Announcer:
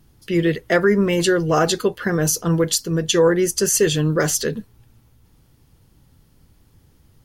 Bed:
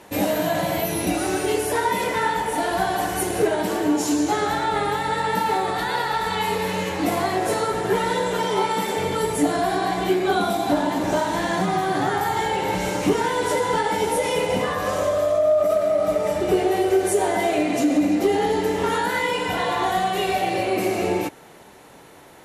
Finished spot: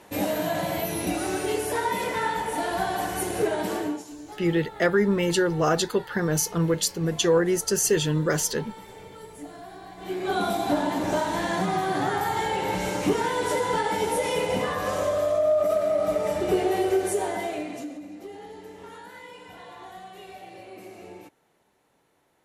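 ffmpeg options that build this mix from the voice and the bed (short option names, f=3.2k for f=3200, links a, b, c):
-filter_complex "[0:a]adelay=4100,volume=-5dB[a];[1:a]volume=12.5dB,afade=t=out:st=3.77:d=0.27:silence=0.158489,afade=t=in:st=9.97:d=0.48:silence=0.141254,afade=t=out:st=16.85:d=1.14:silence=0.133352[b];[a][b]amix=inputs=2:normalize=0"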